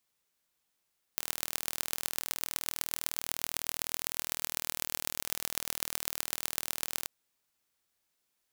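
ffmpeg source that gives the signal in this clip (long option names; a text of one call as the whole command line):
ffmpeg -f lavfi -i "aevalsrc='0.75*eq(mod(n,1108),0)*(0.5+0.5*eq(mod(n,5540),0))':duration=5.88:sample_rate=44100" out.wav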